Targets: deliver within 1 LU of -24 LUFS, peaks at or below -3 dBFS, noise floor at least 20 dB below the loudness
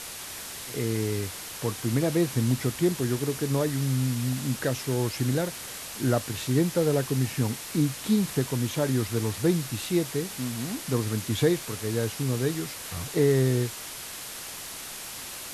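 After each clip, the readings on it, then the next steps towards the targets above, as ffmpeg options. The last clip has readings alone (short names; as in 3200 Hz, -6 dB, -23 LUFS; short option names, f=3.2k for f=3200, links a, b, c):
noise floor -39 dBFS; noise floor target -48 dBFS; loudness -28.0 LUFS; peak -10.5 dBFS; loudness target -24.0 LUFS
-> -af "afftdn=nr=9:nf=-39"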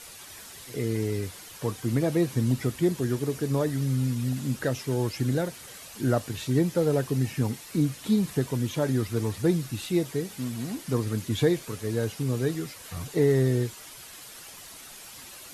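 noise floor -45 dBFS; noise floor target -48 dBFS
-> -af "afftdn=nr=6:nf=-45"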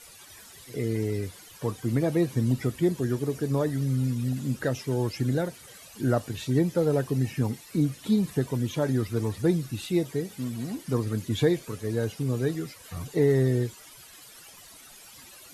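noise floor -49 dBFS; loudness -27.5 LUFS; peak -11.0 dBFS; loudness target -24.0 LUFS
-> -af "volume=3.5dB"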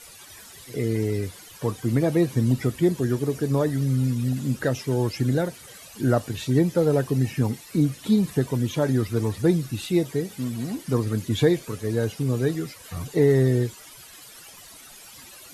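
loudness -24.0 LUFS; peak -7.5 dBFS; noise floor -46 dBFS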